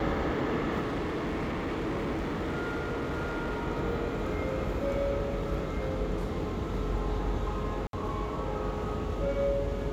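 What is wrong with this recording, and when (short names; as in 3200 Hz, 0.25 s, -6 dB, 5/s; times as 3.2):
0.81–3.68 clipped -28.5 dBFS
7.87–7.93 gap 62 ms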